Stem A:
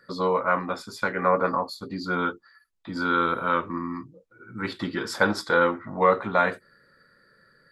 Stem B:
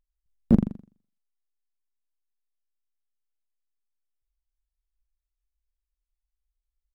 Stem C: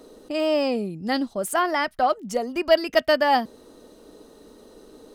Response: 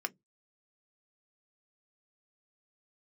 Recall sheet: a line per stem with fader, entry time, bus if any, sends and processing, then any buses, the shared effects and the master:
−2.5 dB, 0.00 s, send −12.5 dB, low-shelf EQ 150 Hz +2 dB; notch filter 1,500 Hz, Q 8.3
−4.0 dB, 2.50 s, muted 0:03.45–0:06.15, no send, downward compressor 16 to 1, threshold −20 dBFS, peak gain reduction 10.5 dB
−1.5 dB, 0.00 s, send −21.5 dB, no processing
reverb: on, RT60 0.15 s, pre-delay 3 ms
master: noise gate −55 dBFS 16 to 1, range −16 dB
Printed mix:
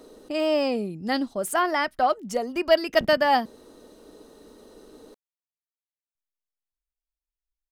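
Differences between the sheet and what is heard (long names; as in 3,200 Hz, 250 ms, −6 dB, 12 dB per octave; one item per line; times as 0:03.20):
stem A: muted
stem B −4.0 dB → −10.5 dB
master: missing noise gate −55 dBFS 16 to 1, range −16 dB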